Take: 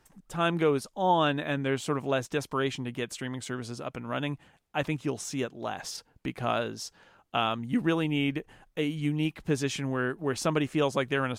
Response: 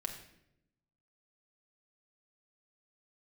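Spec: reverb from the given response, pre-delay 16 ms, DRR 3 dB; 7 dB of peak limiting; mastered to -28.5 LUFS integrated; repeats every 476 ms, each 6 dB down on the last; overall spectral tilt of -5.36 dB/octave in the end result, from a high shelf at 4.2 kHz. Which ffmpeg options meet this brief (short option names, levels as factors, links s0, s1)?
-filter_complex "[0:a]highshelf=f=4200:g=-8.5,alimiter=limit=0.0891:level=0:latency=1,aecho=1:1:476|952|1428|1904|2380|2856:0.501|0.251|0.125|0.0626|0.0313|0.0157,asplit=2[s0][s1];[1:a]atrim=start_sample=2205,adelay=16[s2];[s1][s2]afir=irnorm=-1:irlink=0,volume=0.708[s3];[s0][s3]amix=inputs=2:normalize=0,volume=1.26"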